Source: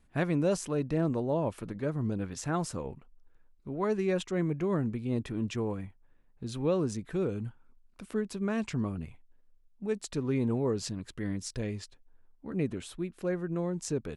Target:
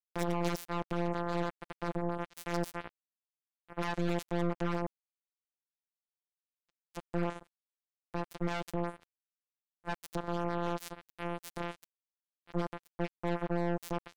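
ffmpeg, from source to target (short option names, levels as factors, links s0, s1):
-filter_complex "[0:a]asettb=1/sr,asplit=3[s0][s1][s2];[s0]atrim=end=4.864[s3];[s1]atrim=start=4.86:end=6.95,asetpts=PTS-STARTPTS,afade=t=in:d=0.004:c=qsin,afade=t=out:st=2.086:d=0.004:c=qsin,acompressor=threshold=0.01:ratio=12[s4];[s2]atrim=start=6.946[s5];[s3][s4]acrossfade=d=0.004:c1=hsin:c2=qsin[s6];[s6][s5]acrossfade=d=0.004:c1=qsin:c2=hsin,aeval=exprs='0.15*(cos(1*acos(clip(val(0)/0.15,-1,1)))-cos(1*PI/2))+0.0188*(cos(2*acos(clip(val(0)/0.15,-1,1)))-cos(2*PI/2))+0.0015*(cos(5*acos(clip(val(0)/0.15,-1,1)))-cos(5*PI/2))+0.00266*(cos(7*acos(clip(val(0)/0.15,-1,1)))-cos(7*PI/2))+0.0422*(cos(8*acos(clip(val(0)/0.15,-1,1)))-cos(8*PI/2))':c=same,afftfilt=real='hypot(re,im)*cos(PI*b)':imag='0':win_size=1024:overlap=0.75,acrusher=bits=3:mix=0:aa=0.5,volume=0.562"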